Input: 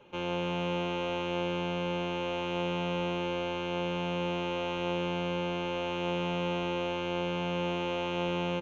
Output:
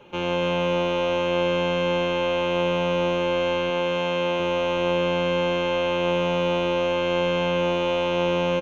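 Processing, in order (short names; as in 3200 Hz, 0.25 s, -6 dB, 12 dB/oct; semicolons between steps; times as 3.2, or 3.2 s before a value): 3.7–4.4 low shelf 160 Hz -9 dB; feedback echo 95 ms, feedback 59%, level -9 dB; gain +7.5 dB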